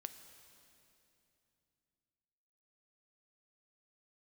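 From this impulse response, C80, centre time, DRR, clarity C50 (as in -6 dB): 10.0 dB, 28 ms, 8.5 dB, 9.5 dB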